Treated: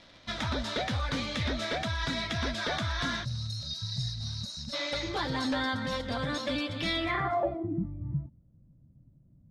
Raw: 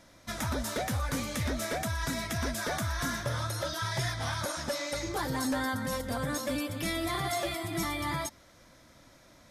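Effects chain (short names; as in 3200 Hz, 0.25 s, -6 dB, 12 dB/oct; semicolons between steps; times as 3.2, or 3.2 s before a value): spectral gain 3.25–4.73, 250–3700 Hz -25 dB; crackle 210/s -44 dBFS; low-pass sweep 3800 Hz -> 150 Hz, 6.97–7.91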